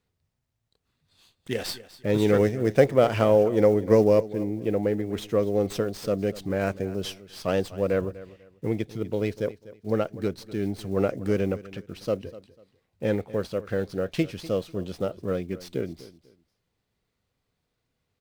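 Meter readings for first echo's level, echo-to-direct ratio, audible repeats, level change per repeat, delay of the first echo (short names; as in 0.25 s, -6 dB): -17.5 dB, -17.0 dB, 2, -11.5 dB, 0.247 s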